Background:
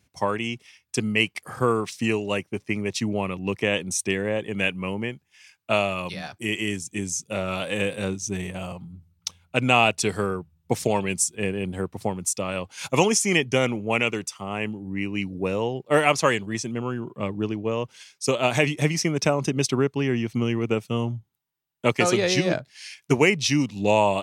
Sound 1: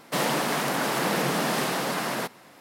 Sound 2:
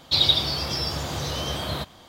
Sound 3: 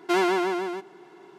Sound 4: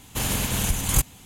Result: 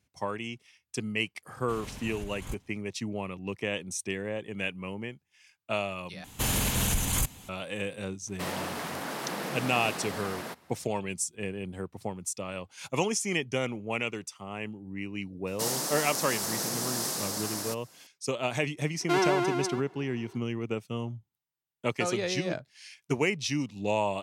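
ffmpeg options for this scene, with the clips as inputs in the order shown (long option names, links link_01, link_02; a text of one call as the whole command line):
ffmpeg -i bed.wav -i cue0.wav -i cue1.wav -i cue2.wav -i cue3.wav -filter_complex "[4:a]asplit=2[link_01][link_02];[1:a]asplit=2[link_03][link_04];[0:a]volume=-8.5dB[link_05];[link_01]lowpass=frequency=2600:poles=1[link_06];[link_02]alimiter=limit=-16dB:level=0:latency=1:release=11[link_07];[link_04]highshelf=frequency=4000:width_type=q:width=1.5:gain=12.5[link_08];[link_05]asplit=2[link_09][link_10];[link_09]atrim=end=6.244[link_11];[link_07]atrim=end=1.25,asetpts=PTS-STARTPTS,volume=-1.5dB[link_12];[link_10]atrim=start=7.486[link_13];[link_06]atrim=end=1.25,asetpts=PTS-STARTPTS,volume=-16dB,afade=type=in:duration=0.004:curve=hsin,afade=type=out:start_time=1.246:duration=0.004:curve=hsin,adelay=1530[link_14];[link_03]atrim=end=2.6,asetpts=PTS-STARTPTS,volume=-9.5dB,afade=type=in:duration=0.004:curve=hsin,afade=type=out:start_time=2.596:duration=0.004:curve=hsin,adelay=8270[link_15];[link_08]atrim=end=2.6,asetpts=PTS-STARTPTS,volume=-11dB,afade=type=in:duration=0.004:curve=hsin,afade=type=out:start_time=2.596:duration=0.004:curve=hsin,adelay=15470[link_16];[3:a]atrim=end=1.38,asetpts=PTS-STARTPTS,volume=-3dB,afade=type=in:duration=0.004:curve=hsin,afade=type=out:start_time=1.376:duration=0.004:curve=hsin,adelay=19000[link_17];[link_11][link_12]acrossfade=duration=0.004:curve1=hsin:curve2=hsin[link_18];[link_18][link_13]acrossfade=duration=0.004:curve1=hsin:curve2=hsin[link_19];[link_19][link_14][link_15][link_16][link_17]amix=inputs=5:normalize=0" out.wav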